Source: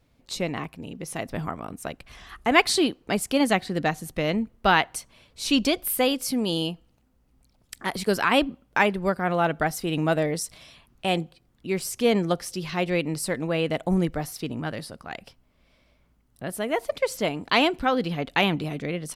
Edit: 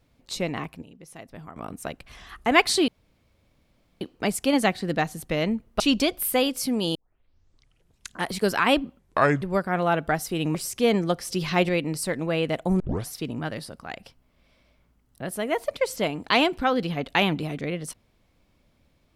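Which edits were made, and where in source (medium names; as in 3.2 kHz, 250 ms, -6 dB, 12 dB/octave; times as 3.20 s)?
0.82–1.56 s: gain -11.5 dB
2.88 s: insert room tone 1.13 s
4.67–5.45 s: delete
6.60 s: tape start 1.36 s
8.64–8.94 s: speed 70%
10.07–11.76 s: delete
12.49–12.90 s: gain +4.5 dB
14.01 s: tape start 0.28 s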